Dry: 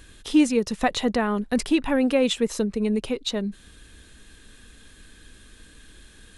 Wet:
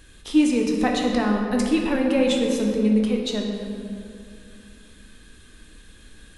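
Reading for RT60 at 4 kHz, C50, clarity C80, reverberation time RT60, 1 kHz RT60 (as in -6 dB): 1.4 s, 2.0 dB, 3.5 dB, 2.5 s, 2.3 s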